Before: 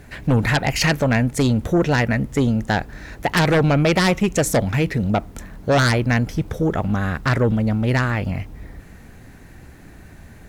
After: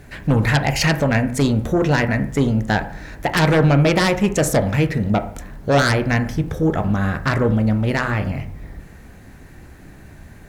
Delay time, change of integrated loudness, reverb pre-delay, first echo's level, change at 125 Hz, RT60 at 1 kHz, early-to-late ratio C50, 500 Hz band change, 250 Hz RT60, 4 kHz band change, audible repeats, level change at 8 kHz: no echo, +1.0 dB, 16 ms, no echo, +1.0 dB, 0.55 s, 12.5 dB, +1.0 dB, 0.55 s, 0.0 dB, no echo, 0.0 dB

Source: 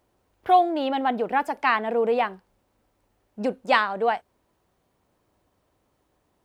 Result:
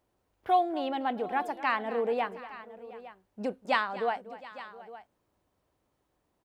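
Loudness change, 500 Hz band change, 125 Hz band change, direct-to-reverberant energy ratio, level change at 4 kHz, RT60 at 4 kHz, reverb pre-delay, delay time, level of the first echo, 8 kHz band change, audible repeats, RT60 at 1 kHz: -7.0 dB, -7.0 dB, no reading, no reverb, -7.0 dB, no reverb, no reverb, 242 ms, -16.0 dB, no reading, 3, no reverb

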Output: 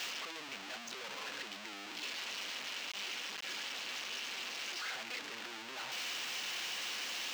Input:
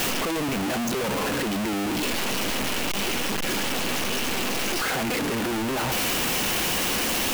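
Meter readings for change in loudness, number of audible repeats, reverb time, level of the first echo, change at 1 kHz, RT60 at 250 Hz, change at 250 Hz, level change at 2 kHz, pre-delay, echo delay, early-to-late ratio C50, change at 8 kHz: -15.0 dB, no echo, no reverb, no echo, -18.0 dB, no reverb, -28.5 dB, -12.5 dB, no reverb, no echo, no reverb, -16.5 dB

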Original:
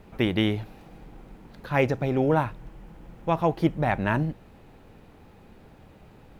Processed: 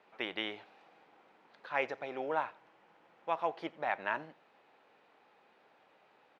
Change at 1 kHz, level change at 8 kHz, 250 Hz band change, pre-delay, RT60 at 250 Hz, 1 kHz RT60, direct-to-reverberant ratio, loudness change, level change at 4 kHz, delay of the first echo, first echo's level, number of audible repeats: -7.5 dB, no reading, -21.0 dB, no reverb, no reverb, no reverb, no reverb, -11.5 dB, -7.5 dB, 87 ms, -24.0 dB, 2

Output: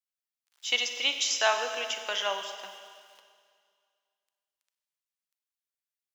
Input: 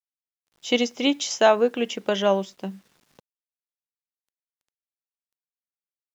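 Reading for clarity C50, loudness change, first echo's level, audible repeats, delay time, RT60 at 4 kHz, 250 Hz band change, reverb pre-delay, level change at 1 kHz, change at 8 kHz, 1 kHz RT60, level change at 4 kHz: 7.0 dB, -6.0 dB, no echo, no echo, no echo, 2.1 s, -27.5 dB, 33 ms, -6.0 dB, no reading, 2.1 s, +1.0 dB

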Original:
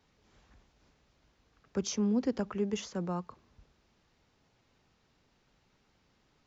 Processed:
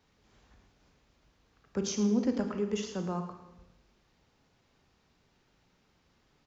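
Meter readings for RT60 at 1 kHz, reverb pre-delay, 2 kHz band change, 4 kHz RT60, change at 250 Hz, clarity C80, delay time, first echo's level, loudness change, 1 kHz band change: 0.85 s, 27 ms, +1.0 dB, 0.85 s, +1.5 dB, 9.0 dB, 110 ms, -14.0 dB, +1.5 dB, +1.0 dB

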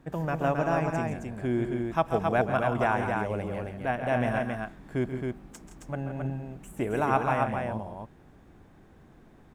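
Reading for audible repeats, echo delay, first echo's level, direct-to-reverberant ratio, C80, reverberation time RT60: 3, 135 ms, -10.5 dB, no reverb, no reverb, no reverb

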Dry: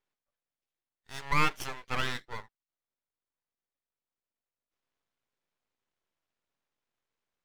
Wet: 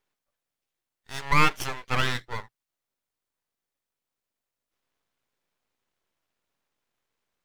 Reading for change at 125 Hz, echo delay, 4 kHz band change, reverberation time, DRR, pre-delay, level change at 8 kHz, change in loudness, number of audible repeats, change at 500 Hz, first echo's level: +7.5 dB, no echo, +6.0 dB, no reverb, no reverb, no reverb, +6.0 dB, +6.0 dB, no echo, +6.0 dB, no echo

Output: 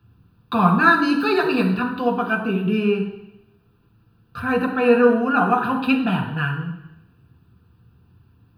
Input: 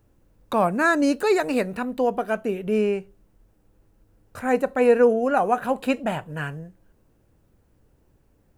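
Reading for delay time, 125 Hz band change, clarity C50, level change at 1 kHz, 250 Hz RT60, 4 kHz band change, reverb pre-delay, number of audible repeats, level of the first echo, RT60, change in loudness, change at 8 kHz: no echo, +10.0 dB, 7.5 dB, +4.0 dB, 0.85 s, +6.5 dB, 3 ms, no echo, no echo, 0.85 s, +3.0 dB, no reading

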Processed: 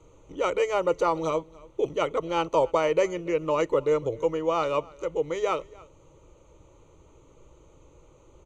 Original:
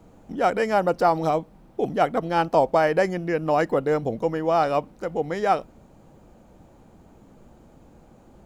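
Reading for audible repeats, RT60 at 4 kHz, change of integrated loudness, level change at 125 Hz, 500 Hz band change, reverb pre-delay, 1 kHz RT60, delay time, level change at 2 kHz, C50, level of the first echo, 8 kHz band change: 1, no reverb, -3.5 dB, -7.5 dB, -2.0 dB, no reverb, no reverb, 285 ms, -6.0 dB, no reverb, -23.0 dB, no reading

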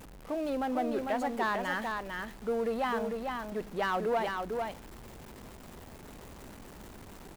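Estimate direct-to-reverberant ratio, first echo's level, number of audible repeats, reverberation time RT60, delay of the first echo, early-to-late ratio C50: no reverb, -4.5 dB, 1, no reverb, 449 ms, no reverb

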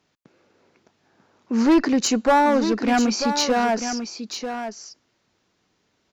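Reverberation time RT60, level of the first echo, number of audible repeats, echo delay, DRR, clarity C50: no reverb, -9.0 dB, 1, 942 ms, no reverb, no reverb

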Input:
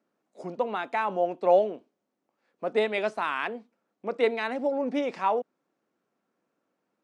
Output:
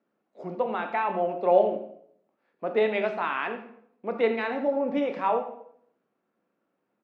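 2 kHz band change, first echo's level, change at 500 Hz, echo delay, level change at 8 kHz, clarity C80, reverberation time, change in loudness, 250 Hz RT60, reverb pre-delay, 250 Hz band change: 0.0 dB, -14.0 dB, +1.0 dB, 84 ms, no reading, 11.0 dB, 0.65 s, +1.0 dB, 0.75 s, 15 ms, +2.0 dB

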